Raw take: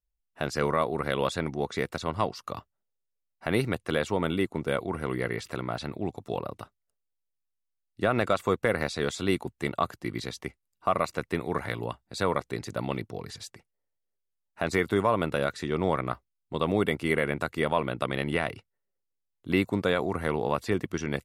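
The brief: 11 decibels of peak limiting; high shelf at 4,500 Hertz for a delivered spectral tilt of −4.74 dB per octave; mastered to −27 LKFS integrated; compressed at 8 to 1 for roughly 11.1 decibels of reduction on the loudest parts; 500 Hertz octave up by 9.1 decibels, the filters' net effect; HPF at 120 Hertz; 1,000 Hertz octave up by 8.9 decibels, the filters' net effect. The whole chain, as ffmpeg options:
ffmpeg -i in.wav -af "highpass=120,equalizer=frequency=500:width_type=o:gain=9,equalizer=frequency=1000:width_type=o:gain=8,highshelf=frequency=4500:gain=6.5,acompressor=threshold=-23dB:ratio=8,volume=5.5dB,alimiter=limit=-12.5dB:level=0:latency=1" out.wav

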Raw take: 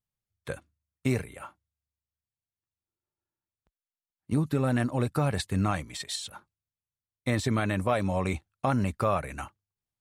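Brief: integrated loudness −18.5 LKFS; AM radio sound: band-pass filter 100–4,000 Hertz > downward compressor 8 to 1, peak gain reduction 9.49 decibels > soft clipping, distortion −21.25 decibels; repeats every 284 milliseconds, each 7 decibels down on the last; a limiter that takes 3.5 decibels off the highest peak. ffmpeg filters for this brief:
ffmpeg -i in.wav -af "alimiter=limit=-16.5dB:level=0:latency=1,highpass=100,lowpass=4000,aecho=1:1:284|568|852|1136|1420:0.447|0.201|0.0905|0.0407|0.0183,acompressor=threshold=-30dB:ratio=8,asoftclip=threshold=-24dB,volume=19dB" out.wav

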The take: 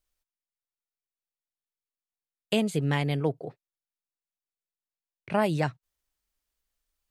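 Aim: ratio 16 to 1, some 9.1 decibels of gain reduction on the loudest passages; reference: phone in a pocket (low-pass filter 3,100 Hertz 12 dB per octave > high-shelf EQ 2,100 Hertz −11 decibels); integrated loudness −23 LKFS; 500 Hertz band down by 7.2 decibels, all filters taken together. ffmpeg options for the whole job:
ffmpeg -i in.wav -af "equalizer=frequency=500:width_type=o:gain=-8.5,acompressor=threshold=-32dB:ratio=16,lowpass=3100,highshelf=frequency=2100:gain=-11,volume=16.5dB" out.wav

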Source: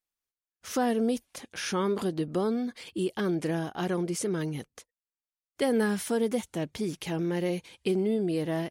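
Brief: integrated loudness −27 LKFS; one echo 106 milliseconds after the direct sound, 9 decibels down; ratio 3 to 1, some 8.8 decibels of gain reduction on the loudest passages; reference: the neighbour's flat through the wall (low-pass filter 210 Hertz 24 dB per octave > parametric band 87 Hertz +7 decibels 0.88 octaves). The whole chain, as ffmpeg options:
ffmpeg -i in.wav -af "acompressor=threshold=-34dB:ratio=3,lowpass=frequency=210:width=0.5412,lowpass=frequency=210:width=1.3066,equalizer=frequency=87:width_type=o:width=0.88:gain=7,aecho=1:1:106:0.355,volume=15.5dB" out.wav

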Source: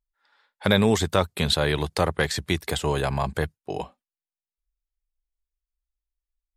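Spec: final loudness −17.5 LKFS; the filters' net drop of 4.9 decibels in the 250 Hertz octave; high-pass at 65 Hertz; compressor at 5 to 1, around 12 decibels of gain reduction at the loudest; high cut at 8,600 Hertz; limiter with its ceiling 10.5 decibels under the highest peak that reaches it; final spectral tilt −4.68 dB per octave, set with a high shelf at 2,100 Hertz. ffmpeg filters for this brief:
ffmpeg -i in.wav -af "highpass=65,lowpass=8600,equalizer=frequency=250:width_type=o:gain=-7,highshelf=frequency=2100:gain=-3.5,acompressor=threshold=-31dB:ratio=5,volume=20dB,alimiter=limit=-2.5dB:level=0:latency=1" out.wav

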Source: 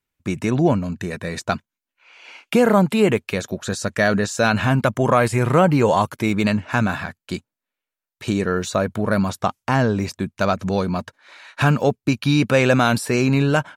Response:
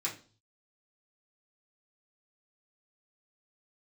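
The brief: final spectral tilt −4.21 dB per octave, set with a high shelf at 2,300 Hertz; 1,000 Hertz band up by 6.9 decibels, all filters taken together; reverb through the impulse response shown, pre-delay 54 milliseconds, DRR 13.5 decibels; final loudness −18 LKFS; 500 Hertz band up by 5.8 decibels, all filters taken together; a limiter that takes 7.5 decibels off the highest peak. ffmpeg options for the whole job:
-filter_complex "[0:a]equalizer=frequency=500:width_type=o:gain=5,equalizer=frequency=1000:width_type=o:gain=8.5,highshelf=frequency=2300:gain=-5.5,alimiter=limit=-5dB:level=0:latency=1,asplit=2[link_01][link_02];[1:a]atrim=start_sample=2205,adelay=54[link_03];[link_02][link_03]afir=irnorm=-1:irlink=0,volume=-17dB[link_04];[link_01][link_04]amix=inputs=2:normalize=0,volume=0.5dB"

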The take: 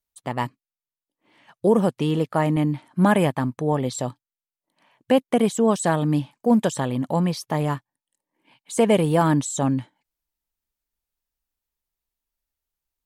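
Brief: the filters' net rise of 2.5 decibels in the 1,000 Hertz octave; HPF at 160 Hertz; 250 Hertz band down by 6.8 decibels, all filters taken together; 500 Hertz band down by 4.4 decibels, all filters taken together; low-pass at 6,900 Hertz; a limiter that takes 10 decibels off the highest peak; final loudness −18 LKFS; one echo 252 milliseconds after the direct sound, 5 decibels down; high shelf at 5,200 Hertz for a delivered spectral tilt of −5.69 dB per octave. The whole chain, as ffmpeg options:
ffmpeg -i in.wav -af "highpass=160,lowpass=6900,equalizer=frequency=250:width_type=o:gain=-6.5,equalizer=frequency=500:width_type=o:gain=-5,equalizer=frequency=1000:width_type=o:gain=5.5,highshelf=frequency=5200:gain=-8.5,alimiter=limit=-17dB:level=0:latency=1,aecho=1:1:252:0.562,volume=11dB" out.wav

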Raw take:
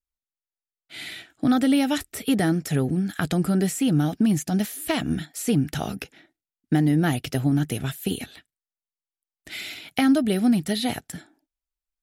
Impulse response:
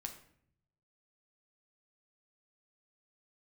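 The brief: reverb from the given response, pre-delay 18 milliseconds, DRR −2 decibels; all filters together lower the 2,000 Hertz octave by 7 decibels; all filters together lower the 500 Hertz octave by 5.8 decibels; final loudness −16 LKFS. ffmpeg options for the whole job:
-filter_complex "[0:a]equalizer=frequency=500:width_type=o:gain=-8,equalizer=frequency=2000:width_type=o:gain=-8.5,asplit=2[link_01][link_02];[1:a]atrim=start_sample=2205,adelay=18[link_03];[link_02][link_03]afir=irnorm=-1:irlink=0,volume=4.5dB[link_04];[link_01][link_04]amix=inputs=2:normalize=0,volume=5.5dB"

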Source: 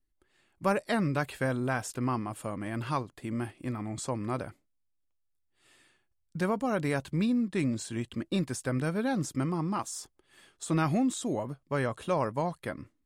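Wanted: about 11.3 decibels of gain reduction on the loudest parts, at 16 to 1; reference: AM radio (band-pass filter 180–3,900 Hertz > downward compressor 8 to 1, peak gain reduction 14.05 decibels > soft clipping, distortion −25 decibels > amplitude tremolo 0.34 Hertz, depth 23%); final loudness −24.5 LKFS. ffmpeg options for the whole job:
ffmpeg -i in.wav -af "acompressor=threshold=-35dB:ratio=16,highpass=180,lowpass=3900,acompressor=threshold=-47dB:ratio=8,asoftclip=threshold=-35.5dB,tremolo=f=0.34:d=0.23,volume=29.5dB" out.wav

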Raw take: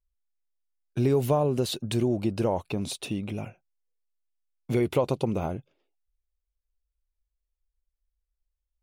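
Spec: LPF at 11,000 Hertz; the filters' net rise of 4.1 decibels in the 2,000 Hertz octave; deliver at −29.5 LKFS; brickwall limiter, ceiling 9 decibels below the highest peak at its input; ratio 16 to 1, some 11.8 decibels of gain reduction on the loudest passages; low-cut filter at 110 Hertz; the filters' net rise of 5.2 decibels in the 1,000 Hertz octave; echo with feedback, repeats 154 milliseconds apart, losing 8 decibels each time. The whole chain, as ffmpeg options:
ffmpeg -i in.wav -af "highpass=110,lowpass=11000,equalizer=frequency=1000:width_type=o:gain=6,equalizer=frequency=2000:width_type=o:gain=4,acompressor=threshold=-28dB:ratio=16,alimiter=level_in=1dB:limit=-24dB:level=0:latency=1,volume=-1dB,aecho=1:1:154|308|462|616|770:0.398|0.159|0.0637|0.0255|0.0102,volume=6.5dB" out.wav

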